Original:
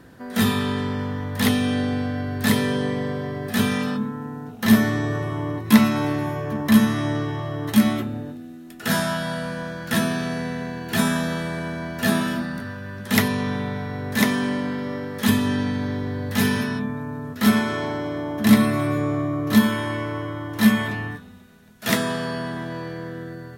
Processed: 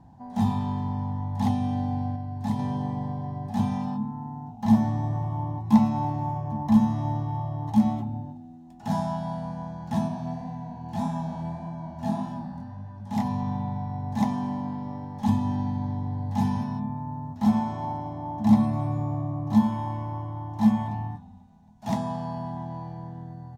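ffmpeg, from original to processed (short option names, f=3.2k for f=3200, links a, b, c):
-filter_complex "[0:a]asplit=3[a][b][c];[a]afade=t=out:st=10.07:d=0.02[d];[b]flanger=delay=17:depth=7.3:speed=1.7,afade=t=in:st=10.07:d=0.02,afade=t=out:st=13.24:d=0.02[e];[c]afade=t=in:st=13.24:d=0.02[f];[d][e][f]amix=inputs=3:normalize=0,asplit=3[g][h][i];[g]atrim=end=2.162[j];[h]atrim=start=2.158:end=2.592,asetpts=PTS-STARTPTS,volume=-4dB[k];[i]atrim=start=2.588[l];[j][k]acrossfade=d=0.004:c1=hsin:c2=hsin[m];[m][l]acrossfade=d=0.004:c1=hsin:c2=hsin,firequalizer=gain_entry='entry(110,0);entry(210,-3);entry(450,-23);entry(820,8);entry(1300,-23);entry(6300,-15);entry(11000,-27)':delay=0.05:min_phase=1"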